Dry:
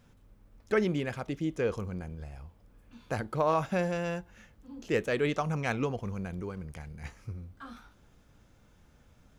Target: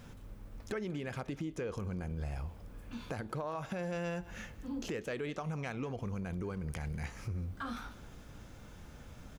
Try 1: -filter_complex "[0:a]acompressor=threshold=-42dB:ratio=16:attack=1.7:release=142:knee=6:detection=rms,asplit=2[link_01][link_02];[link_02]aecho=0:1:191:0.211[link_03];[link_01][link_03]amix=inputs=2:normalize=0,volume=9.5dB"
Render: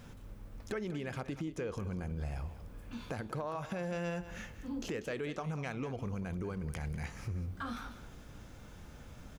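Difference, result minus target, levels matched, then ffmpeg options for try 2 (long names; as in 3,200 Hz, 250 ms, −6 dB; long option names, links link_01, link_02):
echo-to-direct +7 dB
-filter_complex "[0:a]acompressor=threshold=-42dB:ratio=16:attack=1.7:release=142:knee=6:detection=rms,asplit=2[link_01][link_02];[link_02]aecho=0:1:191:0.0944[link_03];[link_01][link_03]amix=inputs=2:normalize=0,volume=9.5dB"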